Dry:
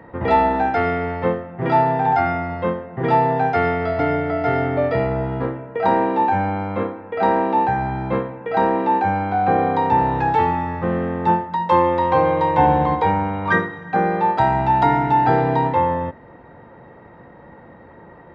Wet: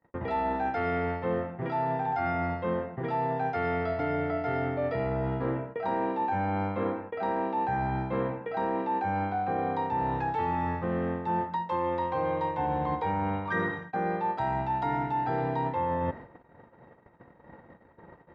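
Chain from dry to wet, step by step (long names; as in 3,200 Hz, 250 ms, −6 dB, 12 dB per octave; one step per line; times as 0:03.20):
reversed playback
downward compressor 12 to 1, threshold −26 dBFS, peak gain reduction 16.5 dB
reversed playback
noise gate −41 dBFS, range −39 dB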